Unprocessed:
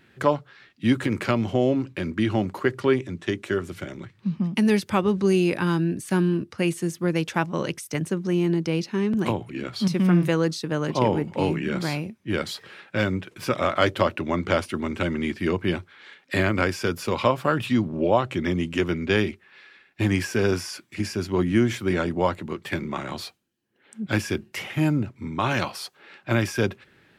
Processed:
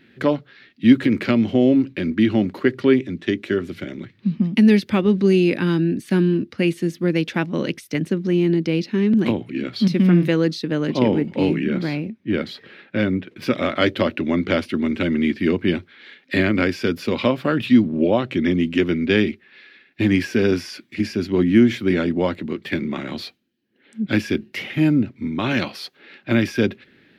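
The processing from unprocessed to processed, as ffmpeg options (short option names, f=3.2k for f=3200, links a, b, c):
-filter_complex "[0:a]asettb=1/sr,asplit=3[a][b][c];[a]atrim=end=11.644[d];[b]atrim=start=11.64:end=13.42,asetpts=PTS-STARTPTS,afade=t=in:d=0.004:c=qsin,afade=t=out:st=1.776:d=0.004:c=qsin,highshelf=f=3.4k:g=-9.5[e];[c]atrim=start=13.416[f];[d][e]acrossfade=d=0.004:c1=hsin:c2=qsin[g];[g][f]acrossfade=d=0.004:c1=qsin:c2=hsin,equalizer=f=250:t=o:w=1:g=11,equalizer=f=500:t=o:w=1:g=3,equalizer=f=1k:t=o:w=1:g=-5,equalizer=f=2k:t=o:w=1:g=6,equalizer=f=4k:t=o:w=1:g=7,equalizer=f=8k:t=o:w=1:g=-8,volume=-2dB"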